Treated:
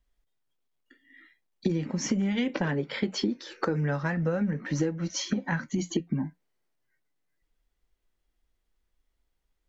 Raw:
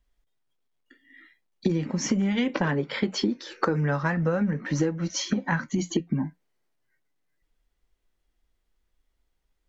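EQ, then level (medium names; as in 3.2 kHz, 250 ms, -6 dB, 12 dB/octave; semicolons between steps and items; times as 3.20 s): dynamic bell 1.1 kHz, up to -5 dB, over -43 dBFS, Q 2.2; -2.5 dB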